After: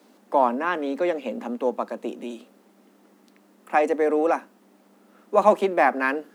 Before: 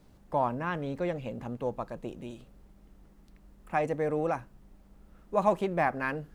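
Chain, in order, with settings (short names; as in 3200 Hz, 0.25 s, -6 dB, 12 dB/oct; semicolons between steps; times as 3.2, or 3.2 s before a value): steep high-pass 210 Hz 72 dB/oct; gain +8.5 dB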